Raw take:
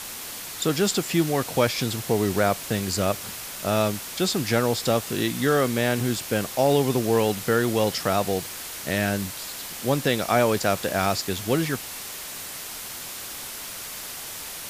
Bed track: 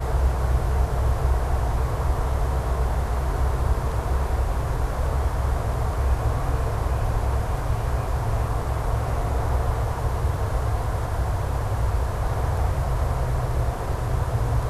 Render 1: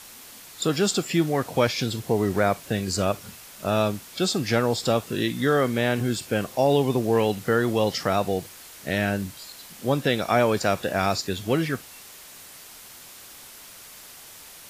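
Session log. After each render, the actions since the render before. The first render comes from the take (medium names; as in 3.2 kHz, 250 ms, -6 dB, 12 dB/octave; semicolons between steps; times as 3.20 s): noise print and reduce 9 dB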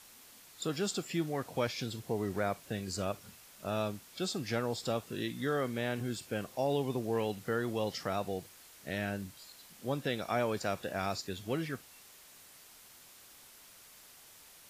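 trim -11.5 dB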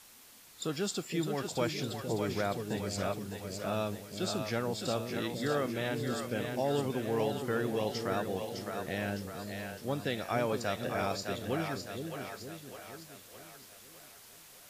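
two-band feedback delay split 490 Hz, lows 467 ms, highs 609 ms, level -5 dB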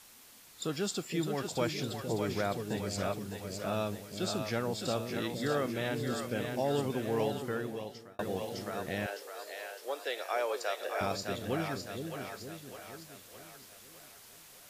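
7.26–8.19 s: fade out; 9.06–11.01 s: steep high-pass 400 Hz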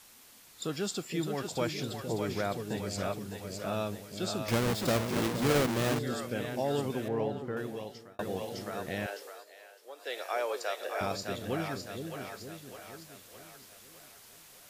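4.48–5.99 s: square wave that keeps the level; 7.08–7.57 s: low-pass 1.2 kHz 6 dB/octave; 9.27–10.15 s: dip -10.5 dB, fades 0.18 s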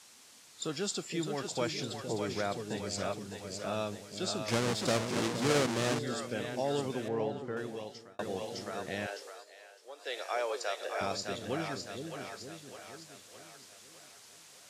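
Chebyshev band-pass 100–7400 Hz, order 2; tone controls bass -4 dB, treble +3 dB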